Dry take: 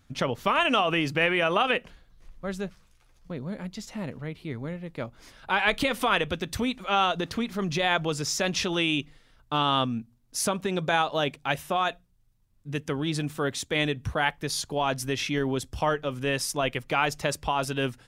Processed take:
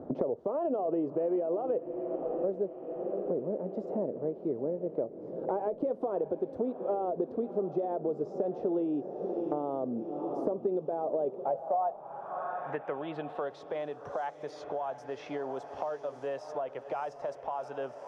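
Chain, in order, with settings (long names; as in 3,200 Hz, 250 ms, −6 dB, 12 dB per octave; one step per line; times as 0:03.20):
drawn EQ curve 290 Hz 0 dB, 640 Hz +12 dB, 2,300 Hz −22 dB
brickwall limiter −16.5 dBFS, peak gain reduction 10.5 dB
feedback delay with all-pass diffusion 681 ms, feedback 59%, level −13.5 dB
band-pass filter sweep 370 Hz → 6,000 Hz, 0:11.14–0:13.79
multiband upward and downward compressor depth 100%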